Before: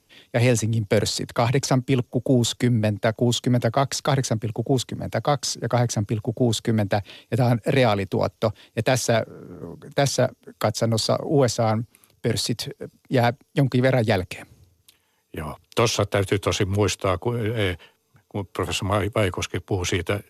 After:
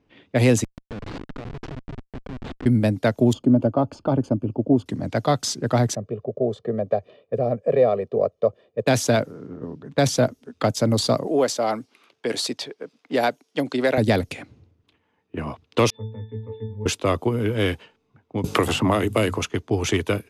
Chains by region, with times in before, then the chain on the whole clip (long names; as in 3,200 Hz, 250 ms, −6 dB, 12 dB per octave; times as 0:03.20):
0:00.64–0:02.66: downward compressor, threshold −30 dBFS + comparator with hysteresis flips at −29.5 dBFS
0:03.33–0:04.86: moving average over 23 samples + comb filter 3.4 ms, depth 35%
0:05.95–0:08.87: resonant band-pass 430 Hz, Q 1.5 + comb filter 1.7 ms, depth 91%
0:11.27–0:13.98: high-pass filter 380 Hz + one half of a high-frequency compander encoder only
0:15.90–0:16.86: low-pass filter 3,400 Hz 24 dB per octave + notch filter 1,800 Hz, Q 21 + resonances in every octave A, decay 0.44 s
0:18.44–0:19.38: mains-hum notches 50/100/150/200/250 Hz + multiband upward and downward compressor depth 100%
whole clip: low-pass that shuts in the quiet parts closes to 2,000 Hz, open at −20.5 dBFS; parametric band 270 Hz +5.5 dB 0.97 octaves